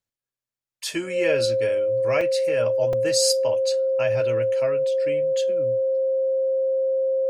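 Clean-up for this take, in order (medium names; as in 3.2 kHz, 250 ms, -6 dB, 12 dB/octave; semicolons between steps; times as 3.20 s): band-stop 530 Hz, Q 30; interpolate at 2.21/2.93 s, 3.4 ms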